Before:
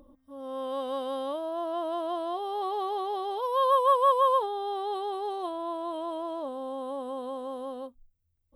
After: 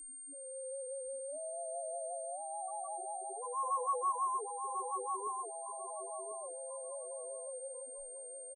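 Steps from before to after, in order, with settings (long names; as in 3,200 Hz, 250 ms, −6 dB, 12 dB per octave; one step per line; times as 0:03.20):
on a send: echo with shifted repeats 203 ms, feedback 49%, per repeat −45 Hz, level −15 dB
on the sum: spectral peaks only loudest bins 1
0:05.27–0:05.81: meter weighting curve A
repeating echo 1,044 ms, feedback 23%, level −5.5 dB
steady tone 8,700 Hz −40 dBFS
high-shelf EQ 9,300 Hz −3.5 dB
level −5 dB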